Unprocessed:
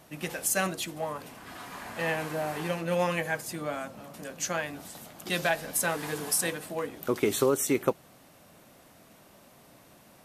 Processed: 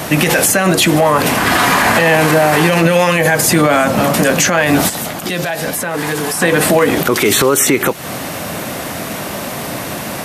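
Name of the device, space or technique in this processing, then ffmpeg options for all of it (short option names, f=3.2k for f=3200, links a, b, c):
mastering chain: -filter_complex "[0:a]highpass=56,equalizer=f=1.9k:t=o:w=0.77:g=2.5,acrossover=split=1100|2900[a][b][c];[a]acompressor=threshold=-30dB:ratio=4[d];[b]acompressor=threshold=-37dB:ratio=4[e];[c]acompressor=threshold=-39dB:ratio=4[f];[d][e][f]amix=inputs=3:normalize=0,acompressor=threshold=-36dB:ratio=2.5,alimiter=level_in=34dB:limit=-1dB:release=50:level=0:latency=1,asplit=3[g][h][i];[g]afade=t=out:st=4.88:d=0.02[j];[h]agate=range=-7dB:threshold=-2dB:ratio=16:detection=peak,afade=t=in:st=4.88:d=0.02,afade=t=out:st=6.4:d=0.02[k];[i]afade=t=in:st=6.4:d=0.02[l];[j][k][l]amix=inputs=3:normalize=0,volume=-1.5dB"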